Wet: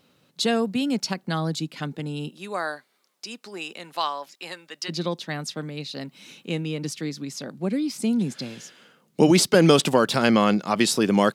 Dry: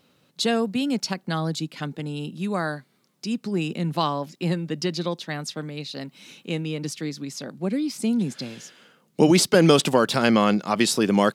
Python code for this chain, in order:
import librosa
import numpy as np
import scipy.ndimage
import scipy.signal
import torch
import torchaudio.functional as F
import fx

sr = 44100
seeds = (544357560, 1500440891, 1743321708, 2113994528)

y = fx.highpass(x, sr, hz=fx.line((2.28, 410.0), (4.88, 1000.0)), slope=12, at=(2.28, 4.88), fade=0.02)